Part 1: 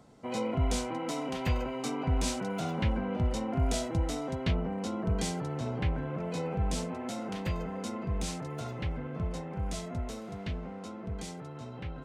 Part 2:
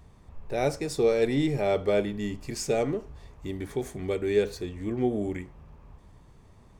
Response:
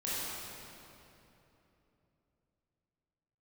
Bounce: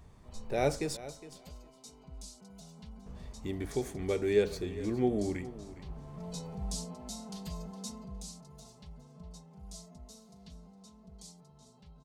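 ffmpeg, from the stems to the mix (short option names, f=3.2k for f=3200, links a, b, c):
-filter_complex "[0:a]firequalizer=gain_entry='entry(180,0);entry(290,-10);entry(470,-5);entry(940,-3);entry(1500,-12);entry(2200,-12);entry(4400,9)':delay=0.05:min_phase=1,acrossover=split=160[a][b];[b]acompressor=threshold=-29dB:ratio=6[c];[a][c]amix=inputs=2:normalize=0,aecho=1:1:4.7:0.85,volume=-8.5dB,afade=t=in:st=5.75:d=0.52:silence=0.266073,afade=t=out:st=7.9:d=0.36:silence=0.421697,asplit=2[d][e];[e]volume=-14.5dB[f];[1:a]volume=-2.5dB,asplit=3[g][h][i];[g]atrim=end=0.97,asetpts=PTS-STARTPTS,afade=t=out:st=0.966:d=0.004:c=hsin[j];[h]atrim=start=0.97:end=3.06,asetpts=PTS-STARTPTS,volume=0[k];[i]atrim=start=3.06,asetpts=PTS-STARTPTS,afade=t=in:d=0.004:c=hsin[l];[j][k][l]concat=n=3:v=0:a=1,asplit=2[m][n];[n]volume=-16dB[o];[f][o]amix=inputs=2:normalize=0,aecho=0:1:412|824|1236:1|0.17|0.0289[p];[d][m][p]amix=inputs=3:normalize=0"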